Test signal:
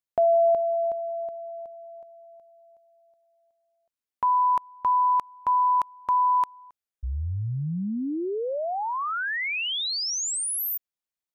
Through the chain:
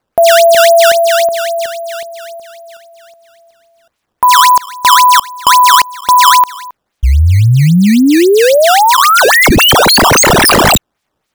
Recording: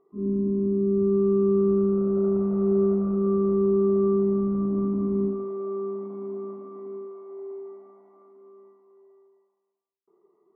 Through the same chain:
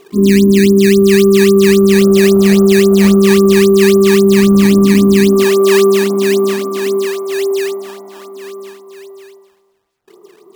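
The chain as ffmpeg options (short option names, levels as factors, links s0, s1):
-af "acrusher=samples=12:mix=1:aa=0.000001:lfo=1:lforange=19.2:lforate=3.7,alimiter=level_in=14.1:limit=0.891:release=50:level=0:latency=1,volume=0.891"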